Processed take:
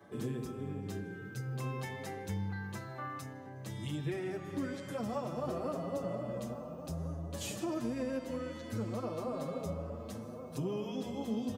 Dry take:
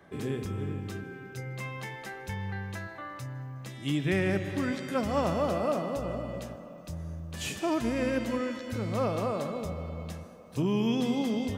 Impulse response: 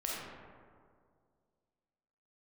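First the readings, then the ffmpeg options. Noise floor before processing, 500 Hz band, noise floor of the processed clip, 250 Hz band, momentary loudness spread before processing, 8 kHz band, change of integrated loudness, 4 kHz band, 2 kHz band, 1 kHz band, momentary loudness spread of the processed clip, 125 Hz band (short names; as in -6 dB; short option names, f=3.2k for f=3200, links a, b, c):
-46 dBFS, -6.5 dB, -46 dBFS, -7.0 dB, 13 LU, -4.0 dB, -7.0 dB, -8.5 dB, -10.0 dB, -7.5 dB, 6 LU, -5.0 dB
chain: -filter_complex "[0:a]highpass=96,equalizer=f=2.3k:w=0.88:g=-6.5,asplit=2[a][b];[b]acompressor=threshold=-39dB:ratio=6,volume=0.5dB[c];[a][c]amix=inputs=2:normalize=0,alimiter=limit=-22dB:level=0:latency=1:release=451,asplit=2[d][e];[e]adelay=1399,volume=-10dB,highshelf=f=4k:g=-31.5[f];[d][f]amix=inputs=2:normalize=0,asplit=2[g][h];[1:a]atrim=start_sample=2205[i];[h][i]afir=irnorm=-1:irlink=0,volume=-15dB[j];[g][j]amix=inputs=2:normalize=0,asplit=2[k][l];[l]adelay=6.6,afreqshift=0.8[m];[k][m]amix=inputs=2:normalize=1,volume=-4dB"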